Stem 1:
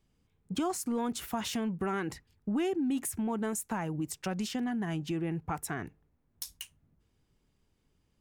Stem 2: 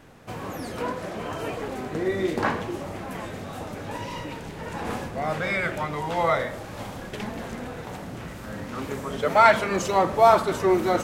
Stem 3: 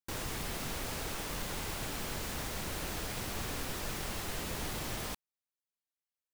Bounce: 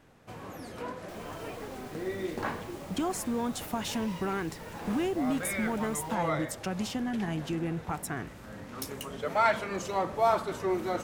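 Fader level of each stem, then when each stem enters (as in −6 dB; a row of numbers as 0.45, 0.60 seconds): +0.5, −9.0, −14.0 decibels; 2.40, 0.00, 1.00 seconds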